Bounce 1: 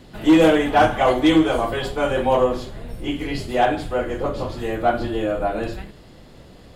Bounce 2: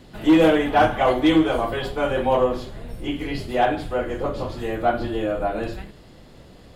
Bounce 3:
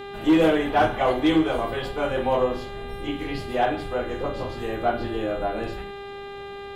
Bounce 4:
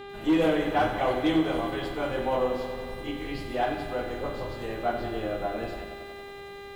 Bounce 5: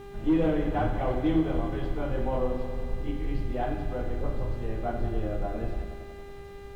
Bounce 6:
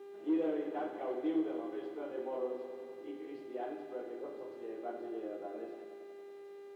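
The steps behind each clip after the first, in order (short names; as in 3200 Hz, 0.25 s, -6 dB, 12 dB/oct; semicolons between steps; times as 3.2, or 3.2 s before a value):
dynamic EQ 7400 Hz, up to -6 dB, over -47 dBFS, Q 1.3; gain -1.5 dB
buzz 400 Hz, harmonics 10, -34 dBFS -6 dB/oct; gain -3 dB
lo-fi delay 93 ms, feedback 80%, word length 8-bit, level -10 dB; gain -5 dB
requantised 8-bit, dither triangular; RIAA curve playback; gain -6 dB
ladder high-pass 320 Hz, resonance 55%; gain -2.5 dB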